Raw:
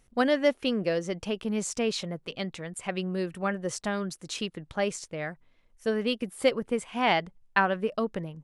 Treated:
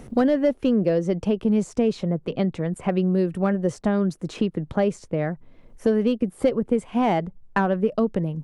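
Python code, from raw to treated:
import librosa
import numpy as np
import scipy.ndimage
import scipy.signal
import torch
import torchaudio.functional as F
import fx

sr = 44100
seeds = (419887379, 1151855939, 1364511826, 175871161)

p1 = 10.0 ** (-20.5 / 20.0) * (np.abs((x / 10.0 ** (-20.5 / 20.0) + 3.0) % 4.0 - 2.0) - 1.0)
p2 = x + (p1 * 10.0 ** (-8.0 / 20.0))
p3 = fx.tilt_shelf(p2, sr, db=9.0, hz=970.0)
p4 = fx.band_squash(p3, sr, depth_pct=70)
y = p4 * 10.0 ** (-1.5 / 20.0)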